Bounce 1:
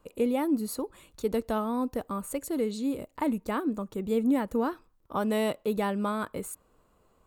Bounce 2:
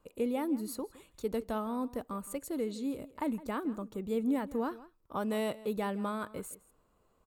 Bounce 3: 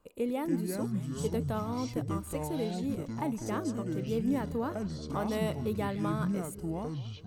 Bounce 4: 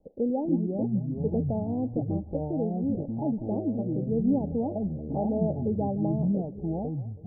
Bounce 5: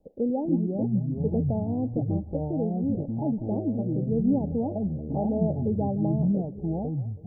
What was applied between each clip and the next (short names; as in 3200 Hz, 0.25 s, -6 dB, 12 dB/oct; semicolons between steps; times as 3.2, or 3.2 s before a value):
outdoor echo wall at 28 m, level -18 dB; gain -5.5 dB
echoes that change speed 0.205 s, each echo -6 st, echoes 3
rippled Chebyshev low-pass 830 Hz, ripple 3 dB; gain +6 dB
dynamic EQ 110 Hz, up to +4 dB, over -39 dBFS, Q 0.9